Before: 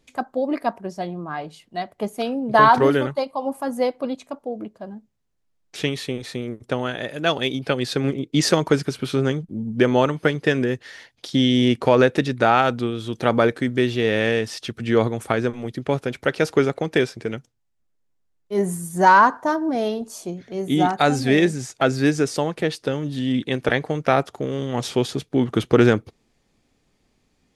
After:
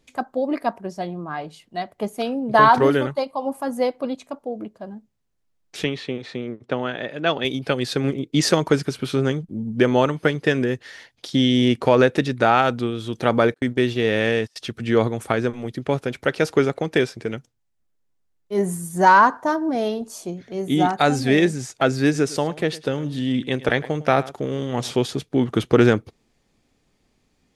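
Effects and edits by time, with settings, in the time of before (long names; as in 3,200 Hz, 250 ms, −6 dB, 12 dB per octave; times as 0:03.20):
0:05.84–0:07.45: band-pass filter 130–3,800 Hz
0:13.54–0:14.56: noise gate −29 dBFS, range −31 dB
0:22.03–0:24.96: single-tap delay 106 ms −18.5 dB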